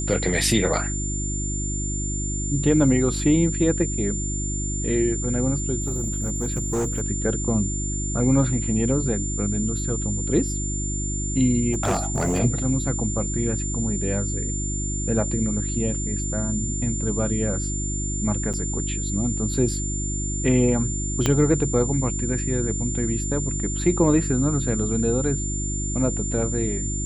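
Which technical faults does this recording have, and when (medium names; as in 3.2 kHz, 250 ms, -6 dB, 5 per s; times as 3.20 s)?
hum 50 Hz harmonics 7 -28 dBFS
whine 7.2 kHz -29 dBFS
5.80–7.02 s: clipped -20 dBFS
11.72–12.40 s: clipped -18 dBFS
18.53–18.54 s: dropout 6.6 ms
21.26 s: pop -6 dBFS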